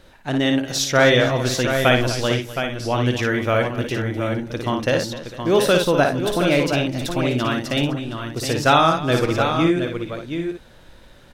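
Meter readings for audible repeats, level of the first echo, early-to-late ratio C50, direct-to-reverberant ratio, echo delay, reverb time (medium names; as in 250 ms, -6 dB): 5, -5.0 dB, no reverb, no reverb, 56 ms, no reverb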